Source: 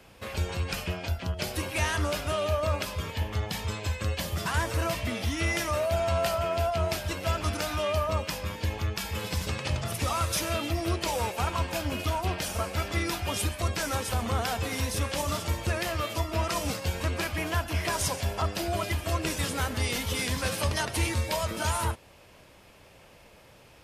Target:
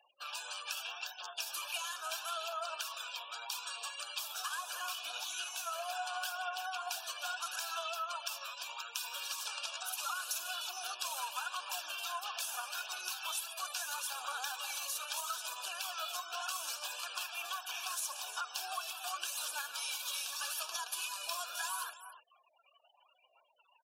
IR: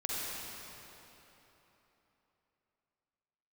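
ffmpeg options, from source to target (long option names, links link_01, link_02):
-filter_complex "[0:a]volume=21dB,asoftclip=hard,volume=-21dB,asplit=2[link_01][link_02];[link_02]aecho=0:1:301:0.133[link_03];[link_01][link_03]amix=inputs=2:normalize=0,aphaser=in_gain=1:out_gain=1:delay=2:decay=0.26:speed=0.77:type=triangular,afftfilt=real='re*gte(hypot(re,im),0.00447)':imag='im*gte(hypot(re,im),0.00447)':win_size=1024:overlap=0.75,flanger=delay=0.9:depth=4:regen=40:speed=1.7:shape=triangular,highpass=frequency=820:width=0.5412,highpass=frequency=820:width=1.3066,highshelf=frequency=3700:gain=4.5,asetrate=48091,aresample=44100,atempo=0.917004,acompressor=threshold=-35dB:ratio=6,asuperstop=centerf=2000:order=12:qfactor=3.2"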